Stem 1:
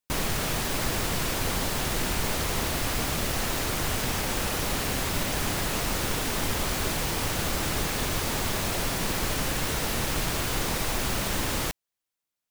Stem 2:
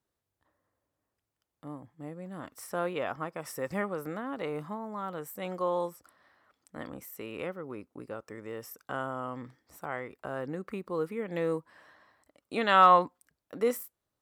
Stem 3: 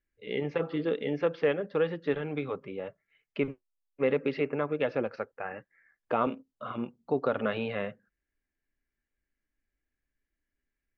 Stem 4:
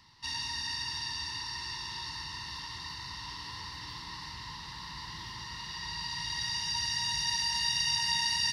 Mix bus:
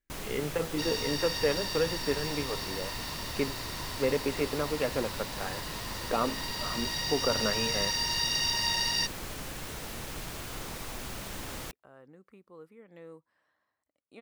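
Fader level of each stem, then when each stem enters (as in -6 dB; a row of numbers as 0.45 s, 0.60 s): -11.5 dB, -18.0 dB, -1.5 dB, +0.5 dB; 0.00 s, 1.60 s, 0.00 s, 0.55 s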